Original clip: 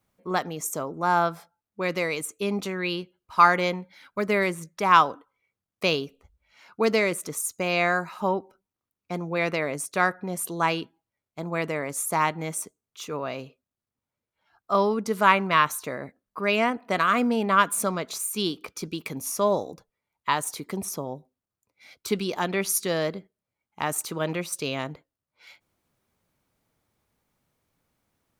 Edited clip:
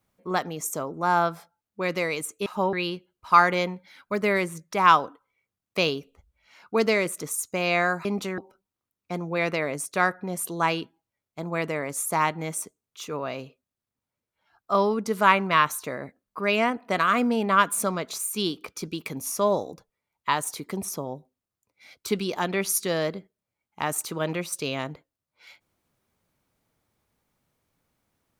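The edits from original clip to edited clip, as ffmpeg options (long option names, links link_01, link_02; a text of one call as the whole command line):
ffmpeg -i in.wav -filter_complex "[0:a]asplit=5[link_01][link_02][link_03][link_04][link_05];[link_01]atrim=end=2.462[link_06];[link_02]atrim=start=8.108:end=8.382[link_07];[link_03]atrim=start=2.788:end=8.112[link_08];[link_04]atrim=start=2.458:end=2.792[link_09];[link_05]atrim=start=8.378[link_10];[link_06][link_07]acrossfade=duration=0.004:curve1=hsin:curve2=hsin[link_11];[link_11][link_08]acrossfade=duration=0.004:curve1=hsin:curve2=hsin[link_12];[link_12][link_09]acrossfade=duration=0.004:curve1=hsin:curve2=hsin[link_13];[link_13][link_10]acrossfade=duration=0.004:curve1=hsin:curve2=hsin" out.wav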